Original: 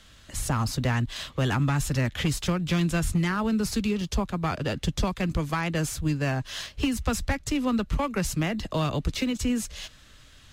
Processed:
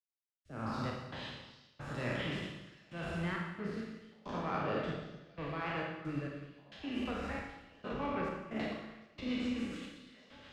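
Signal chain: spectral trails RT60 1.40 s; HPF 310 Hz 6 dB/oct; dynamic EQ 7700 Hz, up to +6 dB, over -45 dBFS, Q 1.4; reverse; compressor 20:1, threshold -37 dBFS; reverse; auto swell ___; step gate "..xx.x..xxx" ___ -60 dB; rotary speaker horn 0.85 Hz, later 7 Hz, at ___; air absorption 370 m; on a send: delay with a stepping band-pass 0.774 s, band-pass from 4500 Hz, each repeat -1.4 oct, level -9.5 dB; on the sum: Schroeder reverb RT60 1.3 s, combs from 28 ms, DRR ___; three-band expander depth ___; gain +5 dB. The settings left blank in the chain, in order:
0.189 s, 67 bpm, 6.57, -1 dB, 40%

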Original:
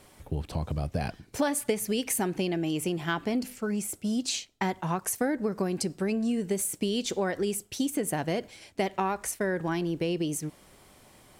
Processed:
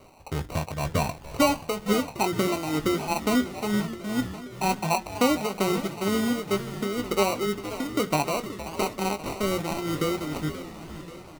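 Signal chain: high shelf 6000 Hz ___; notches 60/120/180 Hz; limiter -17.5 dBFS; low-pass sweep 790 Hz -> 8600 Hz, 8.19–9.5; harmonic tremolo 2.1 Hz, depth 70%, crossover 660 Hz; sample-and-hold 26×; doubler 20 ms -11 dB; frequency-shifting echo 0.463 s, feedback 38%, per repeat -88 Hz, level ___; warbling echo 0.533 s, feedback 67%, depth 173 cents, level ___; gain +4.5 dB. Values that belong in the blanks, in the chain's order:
-8.5 dB, -13.5 dB, -15 dB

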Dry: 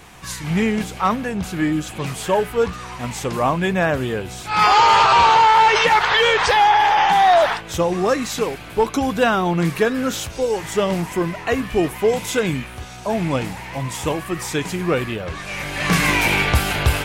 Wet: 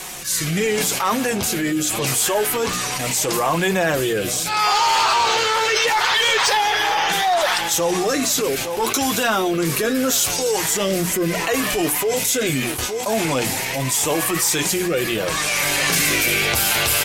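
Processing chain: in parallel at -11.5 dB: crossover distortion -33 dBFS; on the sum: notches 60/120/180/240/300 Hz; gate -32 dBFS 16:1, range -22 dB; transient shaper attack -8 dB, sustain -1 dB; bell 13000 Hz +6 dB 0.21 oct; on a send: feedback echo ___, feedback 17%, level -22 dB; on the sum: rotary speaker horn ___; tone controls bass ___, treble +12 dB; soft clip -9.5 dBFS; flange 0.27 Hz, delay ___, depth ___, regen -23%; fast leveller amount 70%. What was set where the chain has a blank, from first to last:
0.865 s, 0.75 Hz, -9 dB, 5.3 ms, 3.7 ms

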